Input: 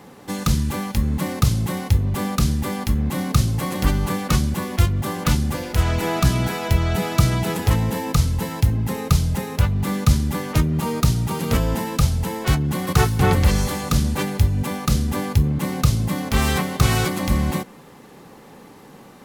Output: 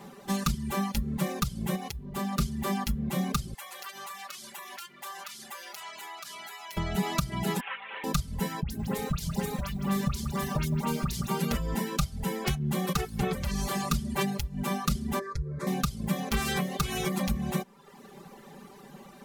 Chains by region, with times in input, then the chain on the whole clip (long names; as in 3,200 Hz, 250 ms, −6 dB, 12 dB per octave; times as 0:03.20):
0:01.75–0:02.39: high-pass filter 48 Hz 24 dB per octave + downward compressor 12 to 1, threshold −25 dBFS
0:03.54–0:06.77: high-pass filter 1,000 Hz + downward compressor 8 to 1, threshold −34 dBFS
0:07.60–0:08.04: linear delta modulator 16 kbit/s, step −26 dBFS + high-pass filter 1,100 Hz
0:08.62–0:11.28: mains-hum notches 60/120/180/240/300/360 Hz + all-pass dispersion highs, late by 81 ms, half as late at 1,800 Hz + feedback echo at a low word length 162 ms, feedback 35%, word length 6 bits, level −9 dB
0:15.19–0:15.67: high-frequency loss of the air 79 metres + phaser with its sweep stopped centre 790 Hz, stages 6
whole clip: downward compressor 12 to 1, threshold −20 dBFS; comb filter 5.1 ms, depth 89%; reverb reduction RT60 0.82 s; level −5 dB